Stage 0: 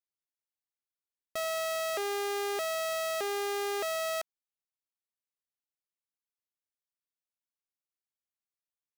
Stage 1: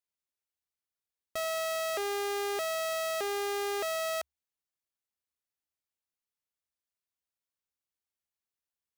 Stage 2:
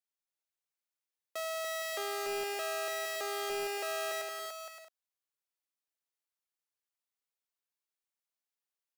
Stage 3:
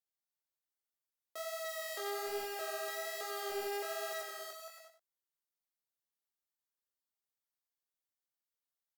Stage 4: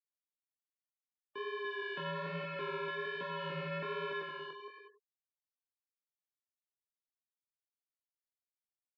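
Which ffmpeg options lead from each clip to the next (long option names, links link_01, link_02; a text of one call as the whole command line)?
ffmpeg -i in.wav -af "equalizer=frequency=71:width=5.1:gain=11.5" out.wav
ffmpeg -i in.wav -filter_complex "[0:a]aecho=1:1:290|464|568.4|631|668.6:0.631|0.398|0.251|0.158|0.1,acrossover=split=300|3700[link_01][link_02][link_03];[link_01]acrusher=bits=4:dc=4:mix=0:aa=0.000001[link_04];[link_04][link_02][link_03]amix=inputs=3:normalize=0,volume=-4dB" out.wav
ffmpeg -i in.wav -af "equalizer=frequency=160:width_type=o:width=0.33:gain=-7,equalizer=frequency=2500:width_type=o:width=0.33:gain=-8,equalizer=frequency=16000:width_type=o:width=0.33:gain=8,flanger=delay=15.5:depth=6.8:speed=1.2,aecho=1:1:94:0.355,volume=-1.5dB" out.wav
ffmpeg -i in.wav -af "afftfilt=real='re*gte(hypot(re,im),0.00126)':imag='im*gte(hypot(re,im),0.00126)':win_size=1024:overlap=0.75,highshelf=frequency=2300:gain=8,highpass=frequency=450:width_type=q:width=0.5412,highpass=frequency=450:width_type=q:width=1.307,lowpass=frequency=3200:width_type=q:width=0.5176,lowpass=frequency=3200:width_type=q:width=0.7071,lowpass=frequency=3200:width_type=q:width=1.932,afreqshift=-240,volume=1dB" out.wav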